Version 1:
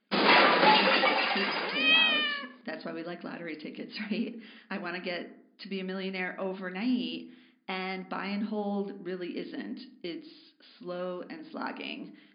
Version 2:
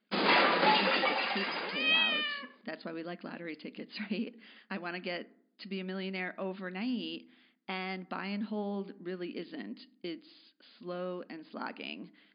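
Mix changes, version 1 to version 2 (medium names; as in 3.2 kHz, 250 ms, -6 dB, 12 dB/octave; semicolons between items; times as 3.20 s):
speech: send -11.5 dB; background -4.5 dB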